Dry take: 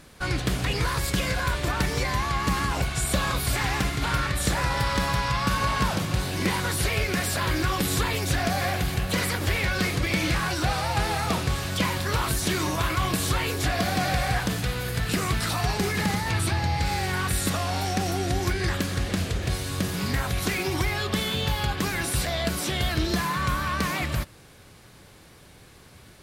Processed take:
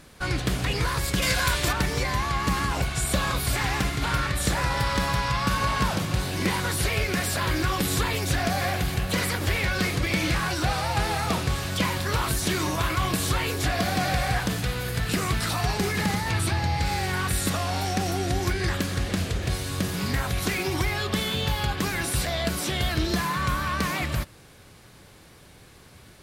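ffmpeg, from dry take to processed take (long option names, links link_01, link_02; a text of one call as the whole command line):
ffmpeg -i in.wav -filter_complex "[0:a]asettb=1/sr,asplit=3[link_01][link_02][link_03];[link_01]atrim=end=1.224[link_04];[link_02]atrim=start=1.22:end=1.73,asetpts=PTS-STARTPTS,afade=type=in:duration=0.004:curve=qsin,afade=type=out:start_time=0.506:duration=0.004:curve=qsin,highshelf=frequency=2100:gain=9.5[link_05];[link_03]atrim=start=1.726[link_06];[link_04][link_05]acrossfade=duration=0.004:curve1=hsin:curve2=qsin[link_07];[link_07][link_06]acrossfade=duration=0.004:curve1=qsin:curve2=hsin" out.wav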